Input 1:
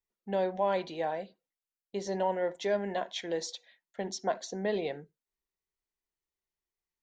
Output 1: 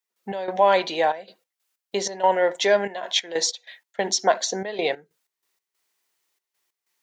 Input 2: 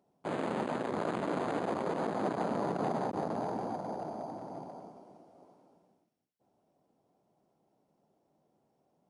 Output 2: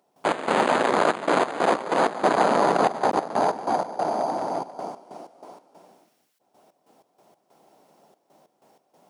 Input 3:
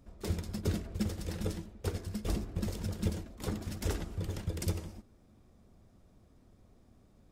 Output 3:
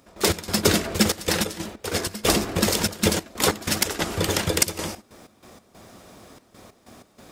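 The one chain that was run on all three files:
high-pass 840 Hz 6 dB/octave; in parallel at -2 dB: compression, threshold -47 dBFS; on the sum: trance gate ".x.xxxx.x.x" 94 bpm -12 dB; normalise loudness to -23 LUFS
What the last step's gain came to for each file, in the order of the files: +14.5 dB, +17.0 dB, +21.5 dB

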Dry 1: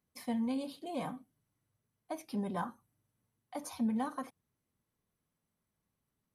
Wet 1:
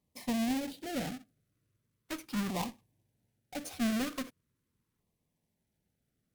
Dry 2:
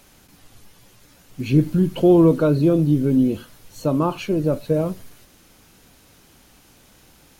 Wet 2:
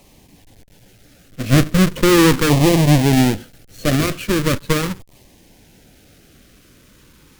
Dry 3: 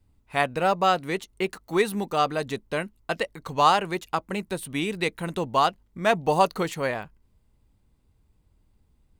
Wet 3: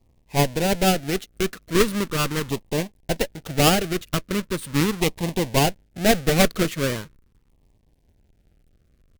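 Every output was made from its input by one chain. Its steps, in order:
square wave that keeps the level; Chebyshev shaper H 4 -7 dB, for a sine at -4.5 dBFS; LFO notch saw down 0.4 Hz 630–1500 Hz; trim -1 dB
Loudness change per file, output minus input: +2.0 LU, +3.0 LU, +3.0 LU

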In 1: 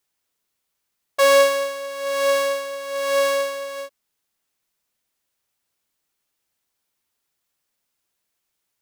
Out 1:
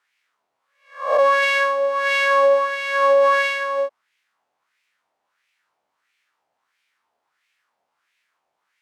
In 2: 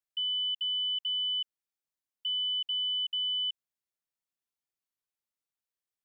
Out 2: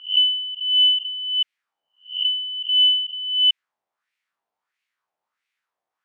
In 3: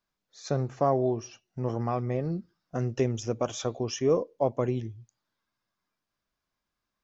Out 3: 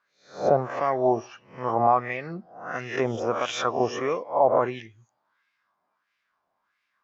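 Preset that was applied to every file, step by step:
reverse spectral sustain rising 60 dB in 0.45 s; tone controls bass +5 dB, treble 0 dB; wah-wah 1.5 Hz 710–2300 Hz, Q 2.7; peak limiter -25.5 dBFS; peak normalisation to -9 dBFS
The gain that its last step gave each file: +16.5 dB, +22.0 dB, +16.5 dB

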